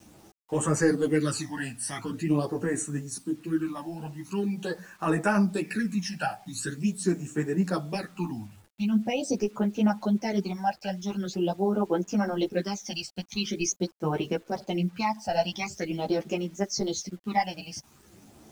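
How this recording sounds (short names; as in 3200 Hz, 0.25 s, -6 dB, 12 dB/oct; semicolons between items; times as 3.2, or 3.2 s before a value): phasing stages 12, 0.44 Hz, lowest notch 360–4500 Hz; a quantiser's noise floor 10-bit, dither none; a shimmering, thickened sound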